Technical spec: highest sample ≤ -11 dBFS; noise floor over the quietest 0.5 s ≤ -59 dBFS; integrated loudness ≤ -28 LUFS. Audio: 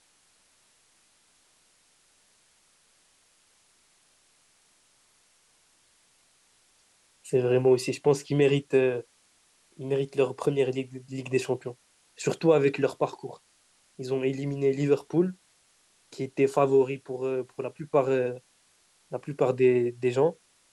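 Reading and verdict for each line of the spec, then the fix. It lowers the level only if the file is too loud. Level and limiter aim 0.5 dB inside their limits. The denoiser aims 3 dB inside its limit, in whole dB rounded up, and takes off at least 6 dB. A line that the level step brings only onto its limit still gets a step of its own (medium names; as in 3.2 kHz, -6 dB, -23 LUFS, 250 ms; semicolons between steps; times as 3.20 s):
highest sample -9.5 dBFS: fail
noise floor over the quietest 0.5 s -65 dBFS: pass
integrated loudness -26.5 LUFS: fail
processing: trim -2 dB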